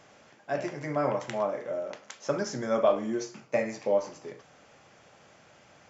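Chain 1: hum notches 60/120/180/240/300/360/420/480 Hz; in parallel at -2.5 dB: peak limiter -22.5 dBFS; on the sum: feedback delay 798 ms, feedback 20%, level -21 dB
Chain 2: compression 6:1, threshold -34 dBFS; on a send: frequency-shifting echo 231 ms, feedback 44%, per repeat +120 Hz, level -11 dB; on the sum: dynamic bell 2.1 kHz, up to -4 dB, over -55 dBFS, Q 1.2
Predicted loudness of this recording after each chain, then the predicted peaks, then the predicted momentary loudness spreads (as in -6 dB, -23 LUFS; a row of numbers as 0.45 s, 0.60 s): -27.0 LUFS, -39.5 LUFS; -9.5 dBFS, -21.5 dBFS; 20 LU, 18 LU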